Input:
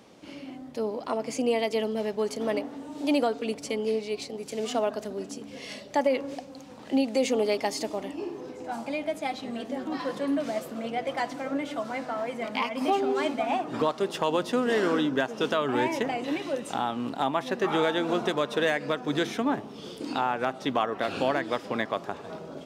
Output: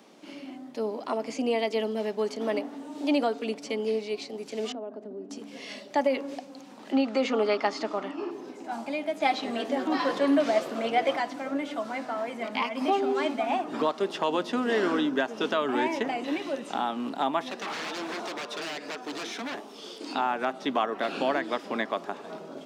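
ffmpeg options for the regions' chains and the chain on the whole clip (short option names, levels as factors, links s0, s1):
-filter_complex "[0:a]asettb=1/sr,asplit=3[s0][s1][s2];[s0]atrim=end=4.724[s3];[s1]atrim=start=4.72:end=5.31,asetpts=PTS-STARTPTS,afade=t=in:d=0.004:c=qsin,afade=t=out:st=0.586:d=0.004:c=qsin,bandpass=f=300:t=q:w=0.98,acompressor=threshold=0.0178:ratio=2.5:attack=3.2:release=140:knee=1:detection=peak[s4];[s2]atrim=start=5.306[s5];[s3][s4]acrossfade=d=0.004:c1=hsin:c2=qsin[s6];[s6][s5]acrossfade=d=0.004:c1=qsin:c2=hsin,asettb=1/sr,asplit=3[s7][s8][s9];[s7]atrim=end=6.924[s10];[s8]atrim=start=6.92:end=8.31,asetpts=PTS-STARTPTS,afade=t=in:d=0.004:c=qsin,afade=t=out:st=1.386:d=0.004:c=qsin,lowpass=5300,equalizer=f=1300:t=o:w=0.57:g=14[s11];[s9]atrim=start=8.306[s12];[s10][s11]acrossfade=d=0.004:c1=hsin:c2=qsin[s13];[s13][s12]acrossfade=d=0.004:c1=qsin:c2=hsin,asettb=1/sr,asplit=3[s14][s15][s16];[s14]atrim=end=9.204[s17];[s15]atrim=start=9.2:end=11.17,asetpts=PTS-STARTPTS,afade=t=in:d=0.004:c=qsin,afade=t=out:st=1.966:d=0.004:c=qsin,equalizer=f=210:w=2:g=-7,acontrast=88[s18];[s16]atrim=start=11.166[s19];[s17][s18]acrossfade=d=0.004:c1=hsin:c2=qsin[s20];[s20][s19]acrossfade=d=0.004:c1=qsin:c2=hsin,asettb=1/sr,asplit=3[s21][s22][s23];[s21]atrim=end=17.504[s24];[s22]atrim=start=17.5:end=20.15,asetpts=PTS-STARTPTS,afade=t=in:d=0.004:c=qsin,afade=t=out:st=2.646:d=0.004:c=qsin,bass=f=250:g=-13,treble=f=4000:g=7,aeval=exprs='0.0376*(abs(mod(val(0)/0.0376+3,4)-2)-1)':c=same[s25];[s23]atrim=start=20.146[s26];[s24][s25]acrossfade=d=0.004:c1=hsin:c2=qsin[s27];[s27][s26]acrossfade=d=0.004:c1=qsin:c2=hsin,bandreject=f=500:w=12,acrossover=split=6300[s28][s29];[s29]acompressor=threshold=0.00112:ratio=4:attack=1:release=60[s30];[s28][s30]amix=inputs=2:normalize=0,highpass=f=190:w=0.5412,highpass=f=190:w=1.3066"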